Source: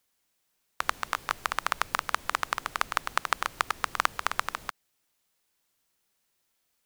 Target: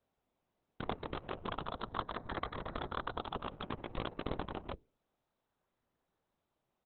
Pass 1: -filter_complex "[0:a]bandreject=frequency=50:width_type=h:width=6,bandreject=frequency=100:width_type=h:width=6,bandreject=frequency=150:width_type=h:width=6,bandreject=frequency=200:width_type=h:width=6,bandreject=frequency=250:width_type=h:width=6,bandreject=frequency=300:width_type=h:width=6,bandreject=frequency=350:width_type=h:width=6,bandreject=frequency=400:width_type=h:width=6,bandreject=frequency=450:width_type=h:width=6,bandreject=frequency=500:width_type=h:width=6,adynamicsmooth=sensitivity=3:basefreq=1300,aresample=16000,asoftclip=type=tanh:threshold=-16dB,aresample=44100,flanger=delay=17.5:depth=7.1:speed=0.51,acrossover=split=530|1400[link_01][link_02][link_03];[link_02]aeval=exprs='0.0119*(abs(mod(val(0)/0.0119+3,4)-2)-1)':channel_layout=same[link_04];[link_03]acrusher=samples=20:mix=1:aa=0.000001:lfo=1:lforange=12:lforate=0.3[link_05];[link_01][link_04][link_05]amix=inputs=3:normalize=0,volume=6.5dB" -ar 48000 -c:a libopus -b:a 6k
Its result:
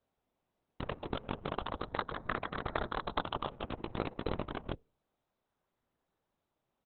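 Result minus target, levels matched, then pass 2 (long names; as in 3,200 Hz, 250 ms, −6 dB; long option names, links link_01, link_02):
soft clipping: distortion −4 dB
-filter_complex "[0:a]bandreject=frequency=50:width_type=h:width=6,bandreject=frequency=100:width_type=h:width=6,bandreject=frequency=150:width_type=h:width=6,bandreject=frequency=200:width_type=h:width=6,bandreject=frequency=250:width_type=h:width=6,bandreject=frequency=300:width_type=h:width=6,bandreject=frequency=350:width_type=h:width=6,bandreject=frequency=400:width_type=h:width=6,bandreject=frequency=450:width_type=h:width=6,bandreject=frequency=500:width_type=h:width=6,adynamicsmooth=sensitivity=3:basefreq=1300,aresample=16000,asoftclip=type=tanh:threshold=-22dB,aresample=44100,flanger=delay=17.5:depth=7.1:speed=0.51,acrossover=split=530|1400[link_01][link_02][link_03];[link_02]aeval=exprs='0.0119*(abs(mod(val(0)/0.0119+3,4)-2)-1)':channel_layout=same[link_04];[link_03]acrusher=samples=20:mix=1:aa=0.000001:lfo=1:lforange=12:lforate=0.3[link_05];[link_01][link_04][link_05]amix=inputs=3:normalize=0,volume=6.5dB" -ar 48000 -c:a libopus -b:a 6k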